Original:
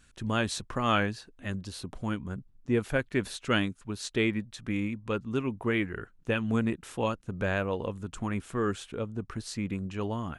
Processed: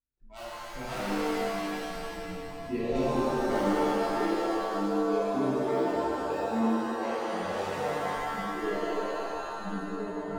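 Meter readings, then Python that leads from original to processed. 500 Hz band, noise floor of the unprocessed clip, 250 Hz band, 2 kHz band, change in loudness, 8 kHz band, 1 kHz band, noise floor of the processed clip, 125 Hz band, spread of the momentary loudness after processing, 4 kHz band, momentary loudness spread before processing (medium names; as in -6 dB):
+3.5 dB, -60 dBFS, 0.0 dB, -3.5 dB, +1.0 dB, -3.5 dB, +5.0 dB, -41 dBFS, -8.5 dB, 10 LU, -4.0 dB, 9 LU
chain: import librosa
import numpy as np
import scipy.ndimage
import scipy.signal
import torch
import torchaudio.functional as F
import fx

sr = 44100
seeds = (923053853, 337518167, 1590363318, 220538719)

y = scipy.signal.medfilt(x, 41)
y = fx.noise_reduce_blind(y, sr, reduce_db=30)
y = fx.rev_shimmer(y, sr, seeds[0], rt60_s=2.8, semitones=7, shimmer_db=-2, drr_db=-11.0)
y = y * librosa.db_to_amplitude(-8.0)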